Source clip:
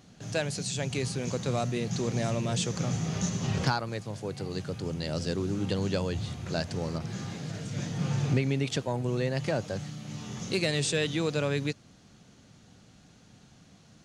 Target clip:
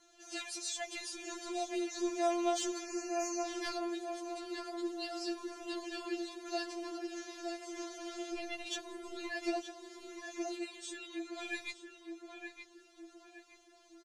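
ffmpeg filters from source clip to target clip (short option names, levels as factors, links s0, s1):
-filter_complex "[0:a]asplit=3[s0][s1][s2];[s0]afade=t=out:st=9.66:d=0.02[s3];[s1]acompressor=threshold=0.0158:ratio=6,afade=t=in:st=9.66:d=0.02,afade=t=out:st=11.38:d=0.02[s4];[s2]afade=t=in:st=11.38:d=0.02[s5];[s3][s4][s5]amix=inputs=3:normalize=0,asplit=2[s6][s7];[s7]adelay=918,lowpass=f=1600:p=1,volume=0.596,asplit=2[s8][s9];[s9]adelay=918,lowpass=f=1600:p=1,volume=0.5,asplit=2[s10][s11];[s11]adelay=918,lowpass=f=1600:p=1,volume=0.5,asplit=2[s12][s13];[s13]adelay=918,lowpass=f=1600:p=1,volume=0.5,asplit=2[s14][s15];[s15]adelay=918,lowpass=f=1600:p=1,volume=0.5,asplit=2[s16][s17];[s17]adelay=918,lowpass=f=1600:p=1,volume=0.5[s18];[s6][s8][s10][s12][s14][s16][s18]amix=inputs=7:normalize=0,asoftclip=type=tanh:threshold=0.119,asettb=1/sr,asplit=3[s19][s20][s21];[s19]atrim=end=2.834[s22];[s20]atrim=start=2.83:end=3.46,asetpts=PTS-STARTPTS,afade=t=in:d=0.004:c=qsin,afade=t=out:st=0.626:d=0.004:c=qsin,asuperstop=centerf=3400:order=20:qfactor=2.5[s23];[s21]atrim=start=3.456[s24];[s22][s23]acrossfade=d=0.004:c1=hsin:c2=qsin[s25];[s25][s24]acrossfade=d=0.004:c1=qsin:c2=hsin,afftfilt=real='re*4*eq(mod(b,16),0)':imag='im*4*eq(mod(b,16),0)':win_size=2048:overlap=0.75,volume=0.794"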